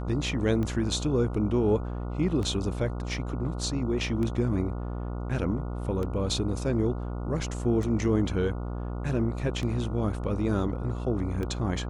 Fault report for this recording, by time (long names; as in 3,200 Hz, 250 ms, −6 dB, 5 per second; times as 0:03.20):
mains buzz 60 Hz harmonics 24 −33 dBFS
scratch tick 33 1/3 rpm −21 dBFS